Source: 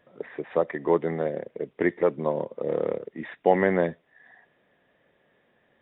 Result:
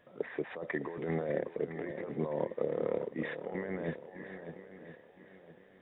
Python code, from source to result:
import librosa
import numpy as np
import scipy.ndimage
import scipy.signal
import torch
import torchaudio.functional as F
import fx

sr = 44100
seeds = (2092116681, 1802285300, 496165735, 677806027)

y = fx.over_compress(x, sr, threshold_db=-30.0, ratio=-1.0)
y = fx.echo_swing(y, sr, ms=1012, ratio=1.5, feedback_pct=31, wet_db=-10.0)
y = y * librosa.db_to_amplitude(-5.5)